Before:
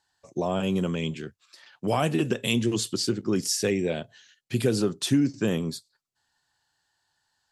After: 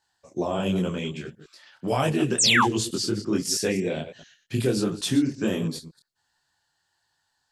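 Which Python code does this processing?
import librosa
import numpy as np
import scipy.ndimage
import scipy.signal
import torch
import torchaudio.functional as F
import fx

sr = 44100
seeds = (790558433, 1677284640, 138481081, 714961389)

y = fx.reverse_delay(x, sr, ms=111, wet_db=-12.5)
y = fx.spec_paint(y, sr, seeds[0], shape='fall', start_s=2.38, length_s=0.27, low_hz=740.0, high_hz=9000.0, level_db=-19.0)
y = fx.detune_double(y, sr, cents=49)
y = y * librosa.db_to_amplitude(4.0)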